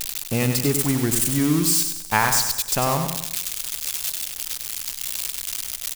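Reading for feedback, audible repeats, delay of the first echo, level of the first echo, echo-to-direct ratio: 44%, 4, 97 ms, −6.5 dB, −5.5 dB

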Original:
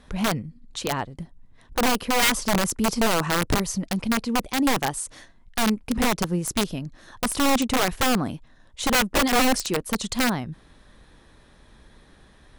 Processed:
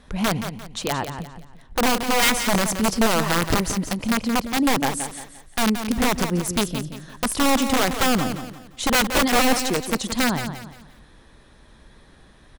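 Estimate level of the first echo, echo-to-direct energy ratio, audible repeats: −9.0 dB, −8.5 dB, 3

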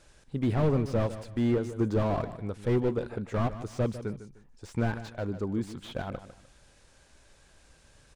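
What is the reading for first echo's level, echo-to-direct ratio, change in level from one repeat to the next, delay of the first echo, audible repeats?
−13.0 dB, −12.5 dB, −11.0 dB, 151 ms, 2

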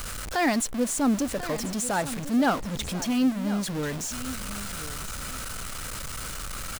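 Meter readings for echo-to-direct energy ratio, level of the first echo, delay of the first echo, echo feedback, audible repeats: −14.0 dB, −14.0 dB, 1,042 ms, 17%, 2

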